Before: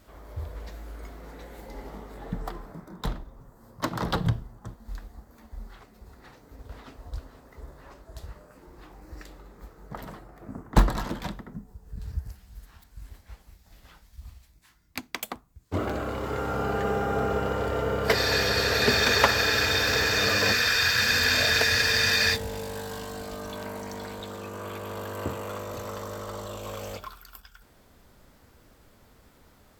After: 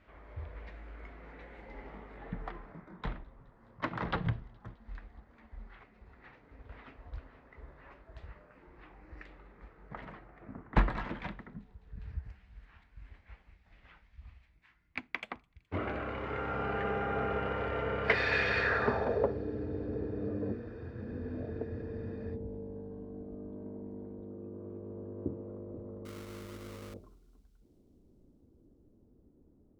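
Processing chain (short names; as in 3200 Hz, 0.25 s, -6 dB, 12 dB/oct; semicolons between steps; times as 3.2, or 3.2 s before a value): low-pass sweep 2300 Hz -> 330 Hz, 18.57–19.39; 26.05–26.94 sample-rate reducer 1700 Hz, jitter 20%; thin delay 0.21 s, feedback 77%, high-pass 4200 Hz, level -23.5 dB; gain -7.5 dB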